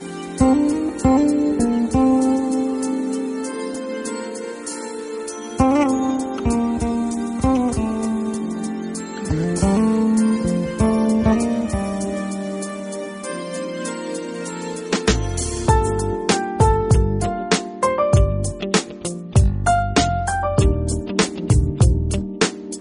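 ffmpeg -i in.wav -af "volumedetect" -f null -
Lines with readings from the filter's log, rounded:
mean_volume: -19.4 dB
max_volume: -2.6 dB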